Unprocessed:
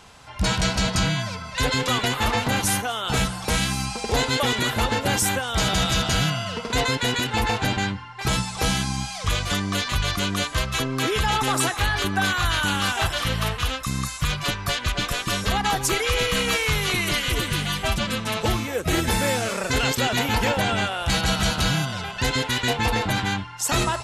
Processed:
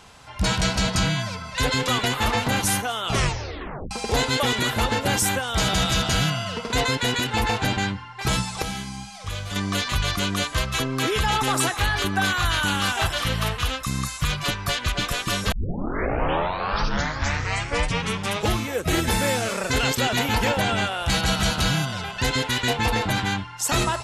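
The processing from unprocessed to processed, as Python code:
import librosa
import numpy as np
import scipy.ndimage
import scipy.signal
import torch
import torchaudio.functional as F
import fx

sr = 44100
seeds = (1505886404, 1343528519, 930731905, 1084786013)

y = fx.comb_fb(x, sr, f0_hz=100.0, decay_s=0.73, harmonics='all', damping=0.0, mix_pct=70, at=(8.62, 9.56))
y = fx.edit(y, sr, fx.tape_stop(start_s=3.04, length_s=0.87),
    fx.tape_start(start_s=15.52, length_s=3.04), tone=tone)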